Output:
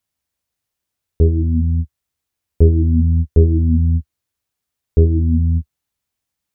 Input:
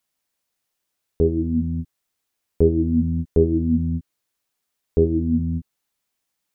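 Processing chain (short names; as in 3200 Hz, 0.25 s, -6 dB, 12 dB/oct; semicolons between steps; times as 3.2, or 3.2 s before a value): bell 74 Hz +14.5 dB 1.7 oct; gain -2.5 dB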